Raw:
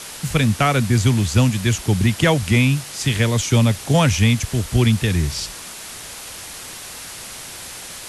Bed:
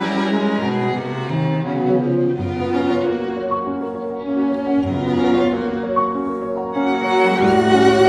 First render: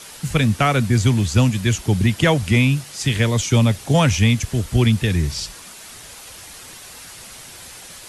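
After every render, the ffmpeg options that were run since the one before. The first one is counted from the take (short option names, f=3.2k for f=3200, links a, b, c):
-af "afftdn=nr=6:nf=-35"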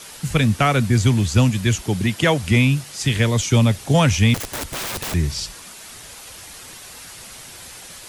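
-filter_complex "[0:a]asettb=1/sr,asplit=3[a][b][c];[a]atrim=end=1.834[d];[b]atrim=start=1.83:end=2.44,asetpts=PTS-STARTPTS,afade=t=in:d=0.004:c=qsin,afade=t=out:st=0.606:d=0.004:c=qsin,highpass=f=170:p=1[e];[c]atrim=start=2.436[f];[d][e]acrossfade=d=0.004:c1=hsin:c2=qsin[g];[g][f]acrossfade=d=0.004:c1=qsin:c2=hsin,asettb=1/sr,asplit=3[h][i][j];[h]atrim=end=4.344[k];[i]atrim=start=4.34:end=5.14,asetpts=PTS-STARTPTS,afade=t=in:d=0.004:c=qsin,afade=t=out:st=0.796:d=0.004:c=qsin,aeval=exprs='(mod(13.3*val(0)+1,2)-1)/13.3':c=same[l];[j]atrim=start=5.136[m];[k][l]acrossfade=d=0.004:c1=hsin:c2=qsin[n];[n][m]acrossfade=d=0.004:c1=qsin:c2=hsin"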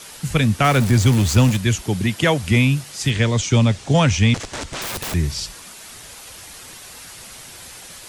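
-filter_complex "[0:a]asettb=1/sr,asplit=3[a][b][c];[a]atrim=end=0.644[d];[b]atrim=start=0.64:end=1.57,asetpts=PTS-STARTPTS,afade=t=in:d=0.004:c=qsin,afade=t=out:st=0.926:d=0.004:c=qsin,aeval=exprs='val(0)+0.5*0.0794*sgn(val(0))':c=same[e];[c]atrim=start=1.566[f];[d][e]acrossfade=d=0.004:c1=hsin:c2=qsin[g];[g][f]acrossfade=d=0.004:c1=qsin:c2=hsin,asettb=1/sr,asplit=3[h][i][j];[h]atrim=end=3.104[k];[i]atrim=start=3.1:end=4.82,asetpts=PTS-STARTPTS,afade=t=in:d=0.004:c=qsin,afade=t=out:st=1.716:d=0.004:c=qsin,lowpass=f=8.1k:w=0.5412,lowpass=f=8.1k:w=1.3066[l];[j]atrim=start=4.816[m];[k][l]acrossfade=d=0.004:c1=hsin:c2=qsin[n];[n][m]acrossfade=d=0.004:c1=qsin:c2=hsin"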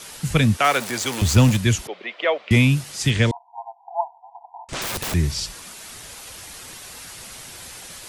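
-filter_complex "[0:a]asettb=1/sr,asplit=3[a][b][c];[a]atrim=end=0.574[d];[b]atrim=start=0.57:end=1.22,asetpts=PTS-STARTPTS,afade=t=in:d=0.004:c=qsin,afade=t=out:st=0.646:d=0.004:c=qsin,highpass=490[e];[c]atrim=start=1.216[f];[d][e]acrossfade=d=0.004:c1=hsin:c2=qsin[g];[g][f]acrossfade=d=0.004:c1=qsin:c2=hsin,asettb=1/sr,asplit=3[h][i][j];[h]atrim=end=1.874[k];[i]atrim=start=1.87:end=2.51,asetpts=PTS-STARTPTS,afade=t=in:d=0.004:c=qsin,afade=t=out:st=0.636:d=0.004:c=qsin,highpass=f=480:w=0.5412,highpass=f=480:w=1.3066,equalizer=f=600:t=q:w=4:g=3,equalizer=f=880:t=q:w=4:g=-7,equalizer=f=1.6k:t=q:w=4:g=-8,equalizer=f=2.8k:t=q:w=4:g=-4,lowpass=f=3k:w=0.5412,lowpass=f=3k:w=1.3066[l];[j]atrim=start=2.506[m];[k][l]acrossfade=d=0.004:c1=hsin:c2=qsin[n];[n][m]acrossfade=d=0.004:c1=qsin:c2=hsin,asettb=1/sr,asplit=3[o][p][q];[o]atrim=end=3.314[r];[p]atrim=start=3.31:end=4.69,asetpts=PTS-STARTPTS,afade=t=in:d=0.004:c=qsin,afade=t=out:st=1.376:d=0.004:c=qsin,asuperpass=centerf=830:order=20:qfactor=2.5[s];[q]atrim=start=4.686[t];[r][s]acrossfade=d=0.004:c1=hsin:c2=qsin[u];[u][t]acrossfade=d=0.004:c1=qsin:c2=hsin"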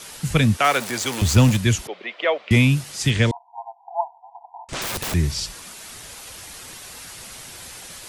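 -af anull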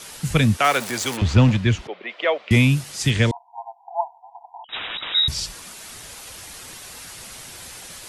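-filter_complex "[0:a]asplit=3[a][b][c];[a]afade=t=out:st=1.16:d=0.02[d];[b]lowpass=3.4k,afade=t=in:st=1.16:d=0.02,afade=t=out:st=2.08:d=0.02[e];[c]afade=t=in:st=2.08:d=0.02[f];[d][e][f]amix=inputs=3:normalize=0,asettb=1/sr,asplit=3[g][h][i];[g]atrim=end=4.644[j];[h]atrim=start=4.64:end=5.28,asetpts=PTS-STARTPTS,afade=t=in:d=0.004:c=qsin,afade=t=out:st=0.636:d=0.004:c=qsin,lowpass=f=3.3k:t=q:w=0.5098,lowpass=f=3.3k:t=q:w=0.6013,lowpass=f=3.3k:t=q:w=0.9,lowpass=f=3.3k:t=q:w=2.563,afreqshift=-3900[k];[i]atrim=start=5.276[l];[j][k]acrossfade=d=0.004:c1=hsin:c2=qsin[m];[m][l]acrossfade=d=0.004:c1=qsin:c2=hsin"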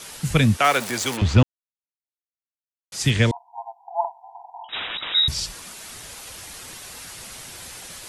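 -filter_complex "[0:a]asettb=1/sr,asplit=3[a][b][c];[a]atrim=end=4.004[d];[b]atrim=start=4:end=4.84,asetpts=PTS-STARTPTS,afade=t=in:d=0.004:c=qsin,afade=t=out:st=0.836:d=0.004:c=qsin,asplit=2[e][f];[f]adelay=44,volume=-4.5dB[g];[e][g]amix=inputs=2:normalize=0,atrim=end_sample=37044[h];[c]atrim=start=4.836[i];[d][h]acrossfade=d=0.004:c1=hsin:c2=qsin[j];[j][i]acrossfade=d=0.004:c1=qsin:c2=hsin,asplit=3[k][l][m];[k]atrim=end=1.43,asetpts=PTS-STARTPTS,afade=t=out:st=1.426:d=0.004:c=hsin[n];[l]atrim=start=1.43:end=2.92,asetpts=PTS-STARTPTS,volume=0[o];[m]atrim=start=2.92,asetpts=PTS-STARTPTS,afade=t=in:d=0.004:c=hsin[p];[n][o][p]concat=n=3:v=0:a=1"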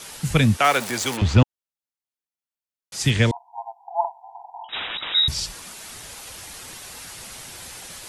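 -af "equalizer=f=840:w=6.2:g=2"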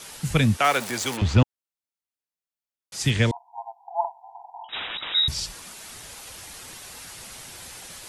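-af "volume=-2.5dB"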